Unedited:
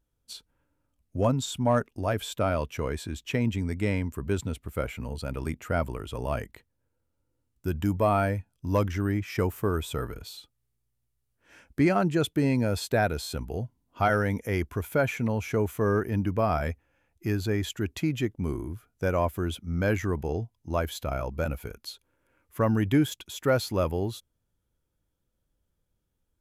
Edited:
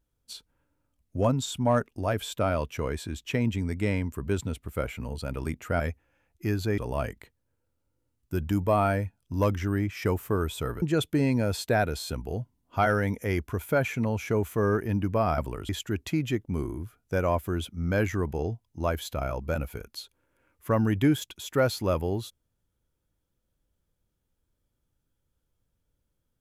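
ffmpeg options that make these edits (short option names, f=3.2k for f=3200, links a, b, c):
-filter_complex "[0:a]asplit=6[a][b][c][d][e][f];[a]atrim=end=5.802[g];[b]atrim=start=16.608:end=17.592[h];[c]atrim=start=6.108:end=10.152[i];[d]atrim=start=12.048:end=16.612[j];[e]atrim=start=5.798:end=6.112[k];[f]atrim=start=17.588[l];[g][h]acrossfade=d=0.004:c1=hsin:c2=hsin[m];[m][i]acrossfade=d=0.004:c1=hsin:c2=hsin[n];[n][j]acrossfade=d=0.004:c1=hsin:c2=hsin[o];[o][k]acrossfade=d=0.004:c1=hsin:c2=hsin[p];[p][l]acrossfade=d=0.004:c1=hsin:c2=hsin"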